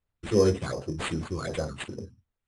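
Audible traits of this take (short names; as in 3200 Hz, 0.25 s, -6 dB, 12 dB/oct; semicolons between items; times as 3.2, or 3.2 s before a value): phasing stages 8, 2.7 Hz, lowest notch 520–4000 Hz; aliases and images of a low sample rate 5600 Hz, jitter 0%; AAC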